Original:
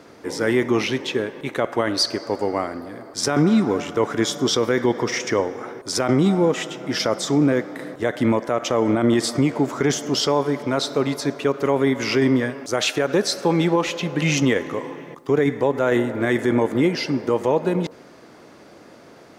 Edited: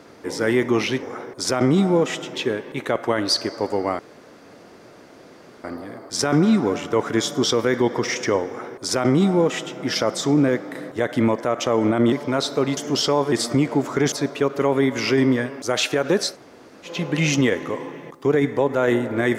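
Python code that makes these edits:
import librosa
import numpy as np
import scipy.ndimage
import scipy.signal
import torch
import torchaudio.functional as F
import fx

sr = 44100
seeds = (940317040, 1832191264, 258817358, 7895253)

y = fx.edit(x, sr, fx.insert_room_tone(at_s=2.68, length_s=1.65),
    fx.duplicate(start_s=5.51, length_s=1.31, to_s=1.03),
    fx.swap(start_s=9.16, length_s=0.8, other_s=10.51, other_length_s=0.65),
    fx.room_tone_fill(start_s=13.35, length_s=0.59, crossfade_s=0.16), tone=tone)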